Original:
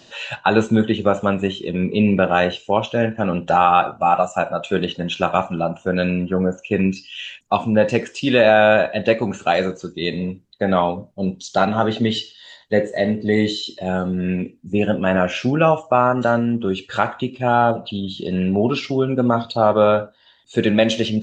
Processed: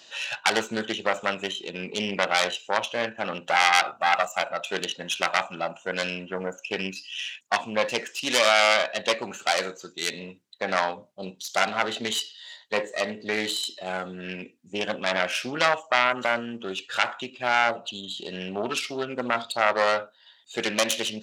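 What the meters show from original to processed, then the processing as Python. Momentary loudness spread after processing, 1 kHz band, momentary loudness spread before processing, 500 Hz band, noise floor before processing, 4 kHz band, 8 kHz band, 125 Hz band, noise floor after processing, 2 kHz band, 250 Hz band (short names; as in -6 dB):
12 LU, -6.5 dB, 9 LU, -10.0 dB, -51 dBFS, +1.0 dB, n/a, -19.5 dB, -57 dBFS, -0.5 dB, -16.0 dB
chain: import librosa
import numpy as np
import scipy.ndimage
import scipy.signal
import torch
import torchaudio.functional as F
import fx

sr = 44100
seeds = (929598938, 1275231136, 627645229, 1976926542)

y = fx.self_delay(x, sr, depth_ms=0.27)
y = fx.highpass(y, sr, hz=1400.0, slope=6)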